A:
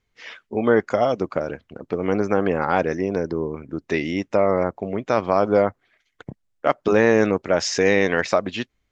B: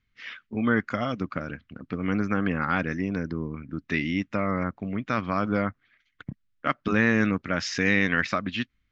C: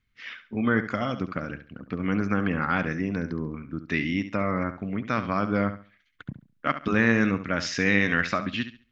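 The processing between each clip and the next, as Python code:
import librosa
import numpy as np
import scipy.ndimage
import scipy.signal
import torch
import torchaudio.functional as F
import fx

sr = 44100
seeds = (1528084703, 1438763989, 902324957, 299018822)

y1 = scipy.signal.sosfilt(scipy.signal.butter(2, 3900.0, 'lowpass', fs=sr, output='sos'), x)
y1 = fx.band_shelf(y1, sr, hz=580.0, db=-13.0, octaves=1.7)
y2 = fx.room_flutter(y1, sr, wall_m=11.9, rt60_s=0.36)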